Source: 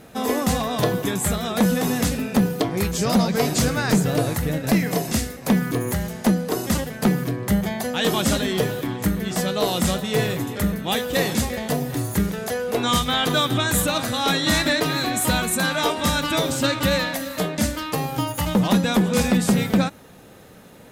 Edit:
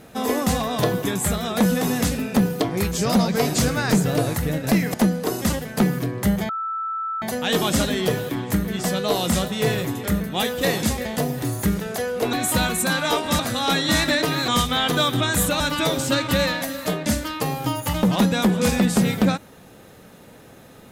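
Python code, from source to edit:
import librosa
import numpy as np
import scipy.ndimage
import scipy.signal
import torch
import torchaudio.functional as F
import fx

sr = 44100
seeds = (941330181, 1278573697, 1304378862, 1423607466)

y = fx.edit(x, sr, fx.cut(start_s=4.94, length_s=1.25),
    fx.insert_tone(at_s=7.74, length_s=0.73, hz=1320.0, db=-24.0),
    fx.swap(start_s=12.85, length_s=1.12, other_s=15.06, other_length_s=1.06), tone=tone)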